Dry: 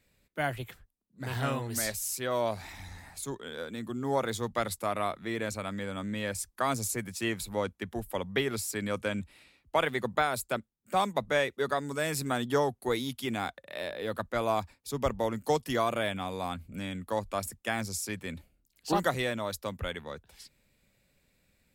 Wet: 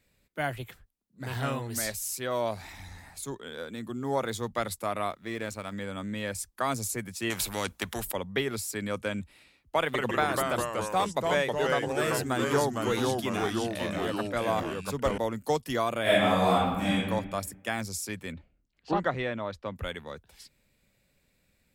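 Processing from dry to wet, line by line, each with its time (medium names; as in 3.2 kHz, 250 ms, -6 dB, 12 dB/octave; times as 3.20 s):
5.10–5.73 s: companding laws mixed up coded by A
7.30–8.12 s: spectrum-flattening compressor 2:1
9.79–15.18 s: ever faster or slower copies 150 ms, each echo -2 st, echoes 3
16.02–16.96 s: reverb throw, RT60 1.2 s, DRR -10.5 dB
18.32–19.76 s: low-pass 2.7 kHz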